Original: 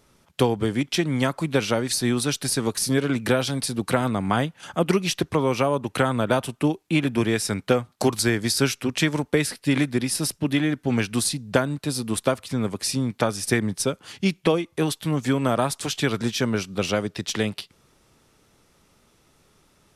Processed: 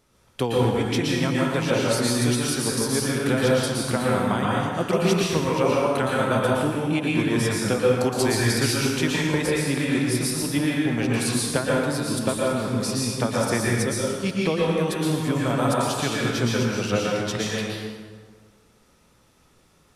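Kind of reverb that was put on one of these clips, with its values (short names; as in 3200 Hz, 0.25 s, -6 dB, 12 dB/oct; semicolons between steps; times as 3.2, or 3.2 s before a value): plate-style reverb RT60 1.6 s, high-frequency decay 0.65×, pre-delay 0.105 s, DRR -5 dB; gain -5 dB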